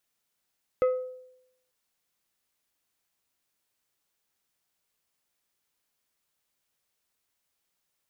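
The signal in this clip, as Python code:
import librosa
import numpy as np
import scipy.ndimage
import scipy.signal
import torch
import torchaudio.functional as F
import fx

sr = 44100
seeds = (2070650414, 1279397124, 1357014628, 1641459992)

y = fx.strike_glass(sr, length_s=0.89, level_db=-18, body='plate', hz=509.0, decay_s=0.81, tilt_db=11.5, modes=5)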